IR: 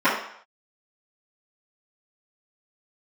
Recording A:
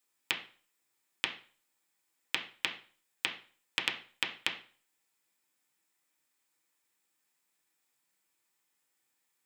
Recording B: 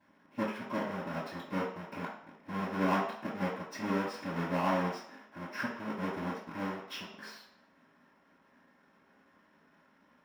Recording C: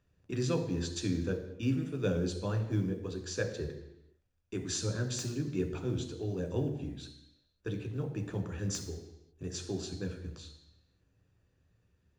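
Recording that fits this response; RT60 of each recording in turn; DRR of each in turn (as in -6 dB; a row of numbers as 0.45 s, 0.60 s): B; 0.40 s, no single decay rate, 0.90 s; 0.0 dB, -16.5 dB, 3.5 dB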